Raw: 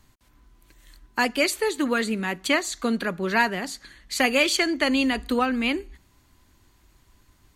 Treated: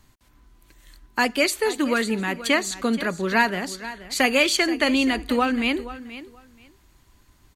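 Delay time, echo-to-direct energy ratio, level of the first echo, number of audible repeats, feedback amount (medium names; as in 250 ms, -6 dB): 478 ms, -15.0 dB, -15.0 dB, 2, 18%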